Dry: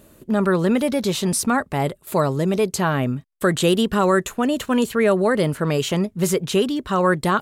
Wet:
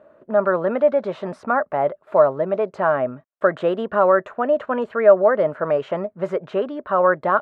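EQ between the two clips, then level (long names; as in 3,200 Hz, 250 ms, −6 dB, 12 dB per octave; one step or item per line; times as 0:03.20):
high-pass filter 410 Hz 6 dB per octave
low-pass with resonance 1,400 Hz, resonance Q 1.9
parametric band 610 Hz +14 dB 0.49 octaves
−4.0 dB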